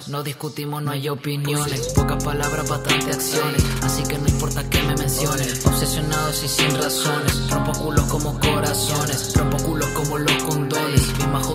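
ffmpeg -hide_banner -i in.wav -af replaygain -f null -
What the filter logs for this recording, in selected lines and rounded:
track_gain = +2.5 dB
track_peak = 0.521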